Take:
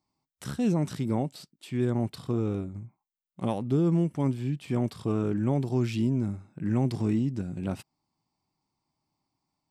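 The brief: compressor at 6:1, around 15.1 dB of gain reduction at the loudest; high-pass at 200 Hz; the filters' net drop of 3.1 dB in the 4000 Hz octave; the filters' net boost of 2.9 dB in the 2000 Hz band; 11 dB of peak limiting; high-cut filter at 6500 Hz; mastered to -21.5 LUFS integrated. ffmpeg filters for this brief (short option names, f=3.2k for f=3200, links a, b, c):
-af "highpass=200,lowpass=6.5k,equalizer=f=2k:t=o:g=5.5,equalizer=f=4k:t=o:g=-5.5,acompressor=threshold=-40dB:ratio=6,volume=24.5dB,alimiter=limit=-10.5dB:level=0:latency=1"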